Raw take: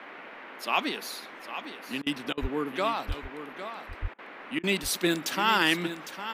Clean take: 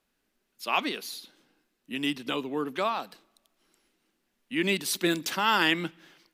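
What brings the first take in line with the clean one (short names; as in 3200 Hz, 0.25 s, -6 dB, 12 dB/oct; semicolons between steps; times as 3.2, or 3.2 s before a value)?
2.41–2.53 HPF 140 Hz 24 dB/oct; 3.07–3.19 HPF 140 Hz 24 dB/oct; 4.01–4.13 HPF 140 Hz 24 dB/oct; interpolate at 2.02/2.33/4.14/4.59, 44 ms; noise print and reduce 30 dB; inverse comb 0.806 s -11 dB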